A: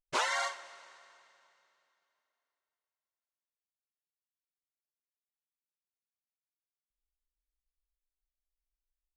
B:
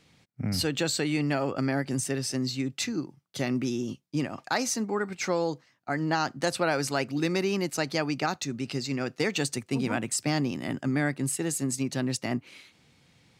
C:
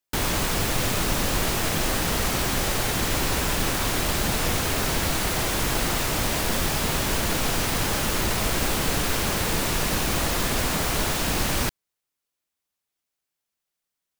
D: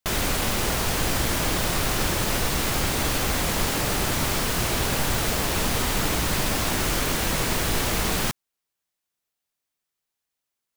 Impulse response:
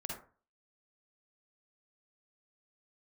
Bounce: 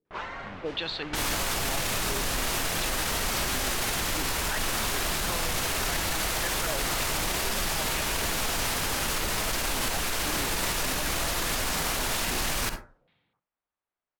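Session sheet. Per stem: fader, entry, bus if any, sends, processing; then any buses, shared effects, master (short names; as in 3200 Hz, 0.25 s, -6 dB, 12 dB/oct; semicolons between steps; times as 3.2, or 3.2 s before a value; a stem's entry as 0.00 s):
-0.5 dB, 0.00 s, send -13.5 dB, auto duck -10 dB, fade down 0.45 s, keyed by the second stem
-16.0 dB, 0.00 s, send -17 dB, AGC gain up to 13 dB; stepped low-pass 3.9 Hz 410–5200 Hz
+1.5 dB, 1.00 s, send -6 dB, low shelf 75 Hz +9 dB
-13.0 dB, 0.05 s, send -9.5 dB, bell 12000 Hz -11.5 dB 2 oct; requantised 10-bit, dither triangular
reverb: on, RT60 0.40 s, pre-delay 43 ms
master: low-pass opened by the level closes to 1300 Hz, open at -16 dBFS; low shelf 430 Hz -11 dB; limiter -19 dBFS, peak gain reduction 10 dB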